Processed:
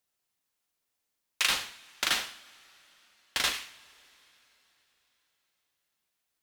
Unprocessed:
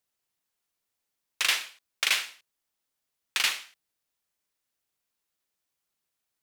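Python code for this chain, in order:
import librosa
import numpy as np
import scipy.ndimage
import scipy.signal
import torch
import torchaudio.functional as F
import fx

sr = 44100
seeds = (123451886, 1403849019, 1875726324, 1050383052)

y = fx.ring_mod(x, sr, carrier_hz=810.0, at=(1.48, 3.52), fade=0.02)
y = fx.rev_double_slope(y, sr, seeds[0], early_s=0.47, late_s=4.1, knee_db=-21, drr_db=9.0)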